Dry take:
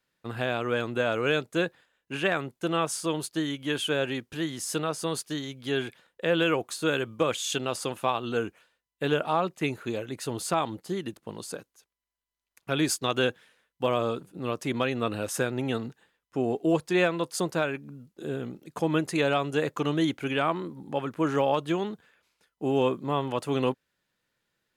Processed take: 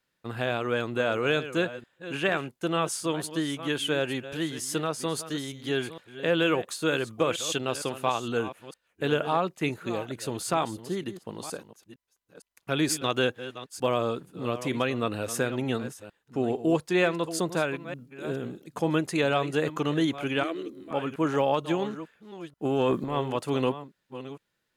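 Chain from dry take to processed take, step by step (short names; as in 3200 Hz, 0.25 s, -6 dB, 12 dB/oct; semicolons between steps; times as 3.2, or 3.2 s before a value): reverse delay 0.46 s, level -13 dB; 20.43–20.91 fixed phaser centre 380 Hz, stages 4; 22.65–23.17 transient shaper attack -9 dB, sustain +9 dB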